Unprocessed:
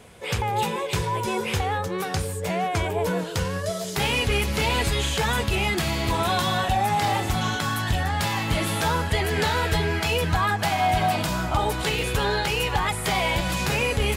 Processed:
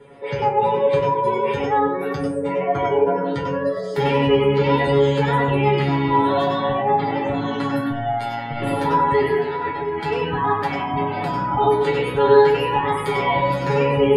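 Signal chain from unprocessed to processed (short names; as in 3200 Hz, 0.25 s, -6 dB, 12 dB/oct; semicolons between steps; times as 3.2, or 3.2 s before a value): spectral gate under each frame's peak -25 dB strong; 4.32–4.74 LPF 8100 Hz 12 dB/oct; 7.78–8.62 robotiser 117 Hz; 9.35–9.98 negative-ratio compressor -28 dBFS, ratio -0.5; resonator 140 Hz, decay 0.22 s, harmonics all, mix 100%; analogue delay 78 ms, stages 1024, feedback 60%, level -12 dB; reverb RT60 0.25 s, pre-delay 92 ms, DRR 1 dB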